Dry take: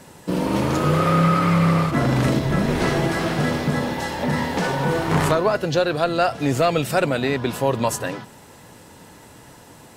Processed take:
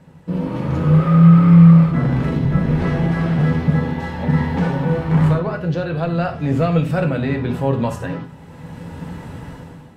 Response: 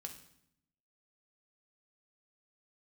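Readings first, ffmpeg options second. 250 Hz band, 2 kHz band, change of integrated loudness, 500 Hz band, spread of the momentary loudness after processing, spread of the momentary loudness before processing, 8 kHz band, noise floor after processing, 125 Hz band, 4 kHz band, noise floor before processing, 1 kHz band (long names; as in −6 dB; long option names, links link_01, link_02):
+6.5 dB, −3.5 dB, +4.5 dB, −2.5 dB, 22 LU, 6 LU, below −15 dB, −40 dBFS, +8.5 dB, −9.0 dB, −46 dBFS, −4.0 dB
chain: -filter_complex "[0:a]bass=frequency=250:gain=9,treble=frequency=4000:gain=-14,dynaudnorm=framelen=160:gausssize=7:maxgain=15dB[link_01];[1:a]atrim=start_sample=2205,afade=type=out:start_time=0.15:duration=0.01,atrim=end_sample=7056[link_02];[link_01][link_02]afir=irnorm=-1:irlink=0,volume=-2.5dB"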